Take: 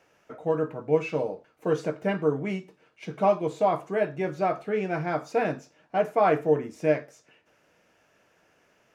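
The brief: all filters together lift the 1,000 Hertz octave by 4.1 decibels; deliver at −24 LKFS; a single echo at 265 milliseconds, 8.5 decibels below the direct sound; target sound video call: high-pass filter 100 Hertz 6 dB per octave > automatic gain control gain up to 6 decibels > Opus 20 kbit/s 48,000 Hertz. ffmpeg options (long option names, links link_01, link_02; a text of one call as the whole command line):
ffmpeg -i in.wav -af "highpass=frequency=100:poles=1,equalizer=frequency=1000:width_type=o:gain=6,aecho=1:1:265:0.376,dynaudnorm=maxgain=6dB,volume=1.5dB" -ar 48000 -c:a libopus -b:a 20k out.opus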